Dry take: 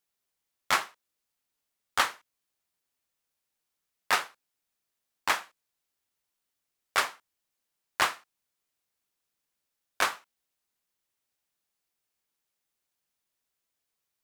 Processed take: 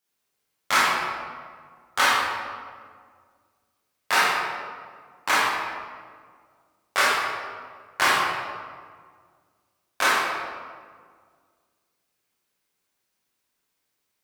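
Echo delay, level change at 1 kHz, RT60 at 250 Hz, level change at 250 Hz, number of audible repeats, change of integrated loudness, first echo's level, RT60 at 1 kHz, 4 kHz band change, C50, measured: no echo audible, +8.5 dB, 2.2 s, +10.5 dB, no echo audible, +6.0 dB, no echo audible, 1.7 s, +7.0 dB, −2.5 dB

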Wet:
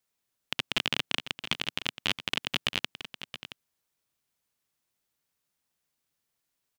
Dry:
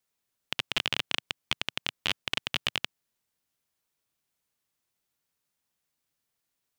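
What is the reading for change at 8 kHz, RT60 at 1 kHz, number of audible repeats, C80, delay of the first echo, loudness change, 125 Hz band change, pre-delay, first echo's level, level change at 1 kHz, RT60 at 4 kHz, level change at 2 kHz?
+0.5 dB, no reverb audible, 1, no reverb audible, 673 ms, 0.0 dB, +2.0 dB, no reverb audible, −12.0 dB, +0.5 dB, no reverb audible, +0.5 dB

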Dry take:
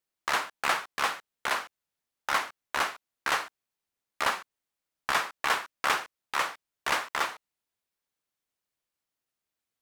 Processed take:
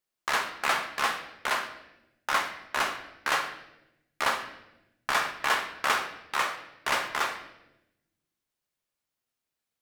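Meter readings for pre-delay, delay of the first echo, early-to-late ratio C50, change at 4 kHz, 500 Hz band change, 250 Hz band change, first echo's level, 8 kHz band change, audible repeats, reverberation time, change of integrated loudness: 5 ms, no echo audible, 9.0 dB, +1.0 dB, +1.5 dB, +2.0 dB, no echo audible, +0.5 dB, no echo audible, 0.95 s, +1.0 dB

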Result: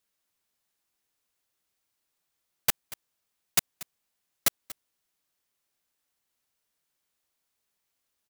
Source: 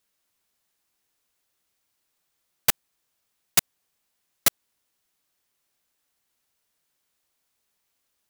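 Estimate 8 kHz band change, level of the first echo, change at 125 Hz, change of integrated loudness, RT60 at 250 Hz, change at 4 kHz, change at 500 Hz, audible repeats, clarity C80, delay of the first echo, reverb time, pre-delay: −4.5 dB, −18.0 dB, −4.5 dB, −5.0 dB, no reverb audible, −4.5 dB, −4.5 dB, 1, no reverb audible, 236 ms, no reverb audible, no reverb audible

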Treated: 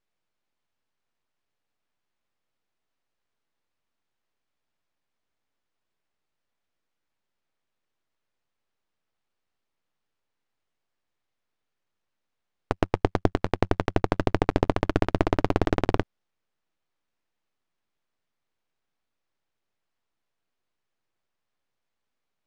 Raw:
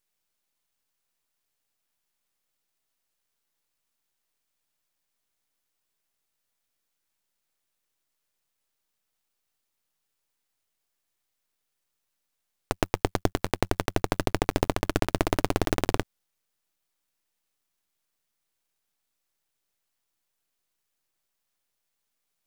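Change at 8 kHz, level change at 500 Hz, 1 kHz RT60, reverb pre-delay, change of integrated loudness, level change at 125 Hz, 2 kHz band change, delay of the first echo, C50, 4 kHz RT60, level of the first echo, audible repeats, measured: −12.0 dB, +2.5 dB, no reverb audible, no reverb audible, +2.0 dB, +3.5 dB, −0.5 dB, no echo audible, no reverb audible, no reverb audible, no echo audible, no echo audible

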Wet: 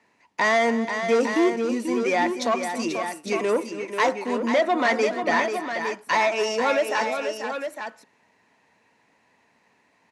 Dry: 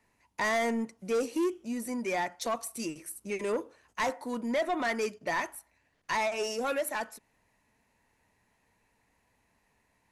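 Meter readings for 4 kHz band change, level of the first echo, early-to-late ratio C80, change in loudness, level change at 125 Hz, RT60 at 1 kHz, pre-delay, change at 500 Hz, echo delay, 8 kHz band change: +9.0 dB, −16.0 dB, no reverb audible, +8.5 dB, can't be measured, no reverb audible, no reverb audible, +9.5 dB, 277 ms, +3.5 dB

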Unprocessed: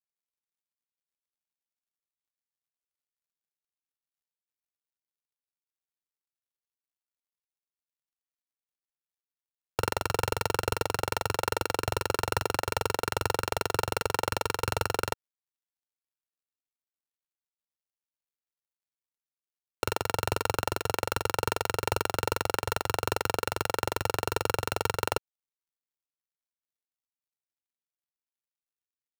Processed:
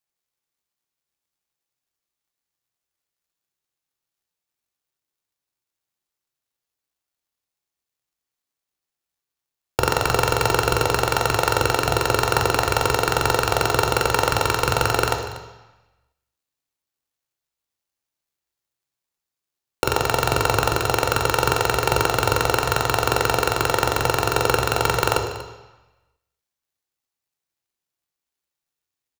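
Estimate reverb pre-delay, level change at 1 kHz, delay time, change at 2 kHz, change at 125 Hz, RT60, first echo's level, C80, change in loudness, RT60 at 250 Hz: 3 ms, +10.0 dB, 239 ms, +10.0 dB, +10.5 dB, 1.0 s, −16.0 dB, 8.0 dB, +10.0 dB, 1.1 s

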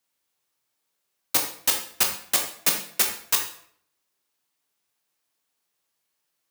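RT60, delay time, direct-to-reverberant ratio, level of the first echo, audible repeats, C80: 0.60 s, no echo audible, 2.0 dB, no echo audible, no echo audible, 10.5 dB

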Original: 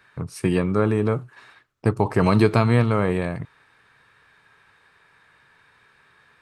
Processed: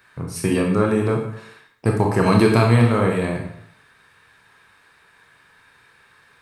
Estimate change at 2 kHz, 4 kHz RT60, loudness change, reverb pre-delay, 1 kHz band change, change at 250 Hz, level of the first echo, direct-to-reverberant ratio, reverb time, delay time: +3.5 dB, 0.60 s, +2.5 dB, 22 ms, +3.0 dB, +3.0 dB, no echo audible, 0.5 dB, 0.70 s, no echo audible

